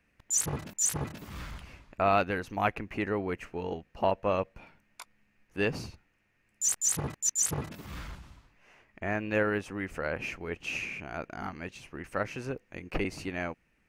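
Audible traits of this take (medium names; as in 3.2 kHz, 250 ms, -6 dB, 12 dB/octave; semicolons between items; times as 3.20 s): noise floor -72 dBFS; spectral tilt -3.5 dB/octave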